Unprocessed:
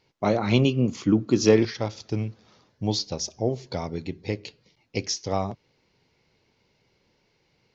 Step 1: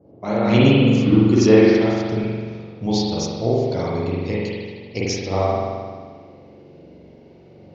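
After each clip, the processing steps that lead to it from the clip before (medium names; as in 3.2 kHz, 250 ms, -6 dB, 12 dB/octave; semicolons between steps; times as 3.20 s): fade-in on the opening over 0.52 s; band noise 73–520 Hz -53 dBFS; spring tank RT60 1.7 s, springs 43 ms, chirp 35 ms, DRR -7 dB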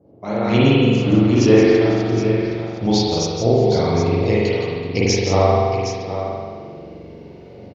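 level rider gain up to 8 dB; on a send: multi-tap echo 170/767 ms -8/-9.5 dB; on the sum: trim -1.5 dB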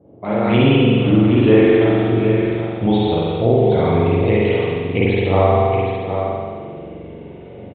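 in parallel at 0 dB: peak limiter -12 dBFS, peak gain reduction 10.5 dB; on the sum: resampled via 8 kHz; trim -2.5 dB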